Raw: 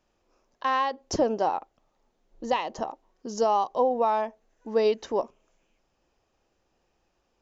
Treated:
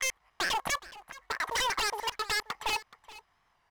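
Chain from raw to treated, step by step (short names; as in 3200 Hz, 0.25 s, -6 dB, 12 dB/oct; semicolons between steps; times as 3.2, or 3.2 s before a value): slices in reverse order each 0.2 s, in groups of 4; high shelf 3100 Hz -11.5 dB; comb 2 ms, depth 39%; short-mantissa float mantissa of 2-bit; overdrive pedal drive 12 dB, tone 1700 Hz, clips at -12 dBFS; wavefolder -24 dBFS; echo 0.851 s -18.5 dB; speed mistake 7.5 ips tape played at 15 ips; record warp 45 rpm, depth 100 cents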